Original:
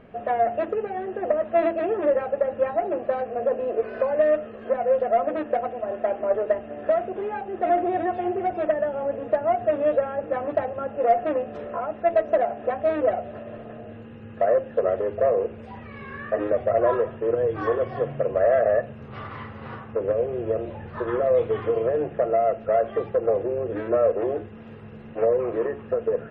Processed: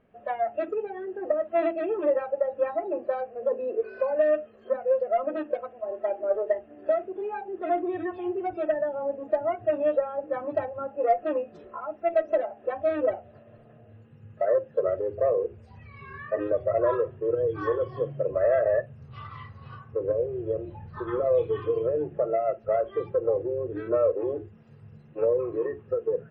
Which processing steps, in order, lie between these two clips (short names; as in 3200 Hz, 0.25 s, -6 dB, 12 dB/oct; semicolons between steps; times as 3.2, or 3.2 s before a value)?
spectral noise reduction 13 dB; gain -2.5 dB